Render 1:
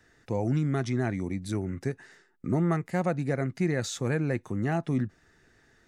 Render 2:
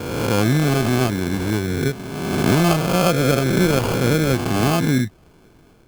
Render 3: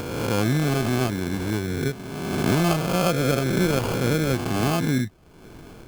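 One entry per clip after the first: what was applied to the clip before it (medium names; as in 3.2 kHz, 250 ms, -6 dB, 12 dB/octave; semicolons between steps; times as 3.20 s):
reverse spectral sustain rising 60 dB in 1.62 s; sample-rate reducer 1.9 kHz, jitter 0%; trim +8 dB
upward compressor, threshold -25 dBFS; trim -4.5 dB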